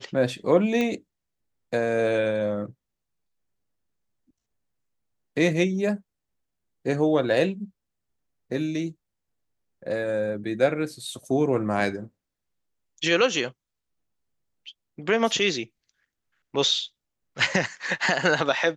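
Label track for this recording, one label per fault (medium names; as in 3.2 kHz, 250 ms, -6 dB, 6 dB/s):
0.810000	0.810000	pop -14 dBFS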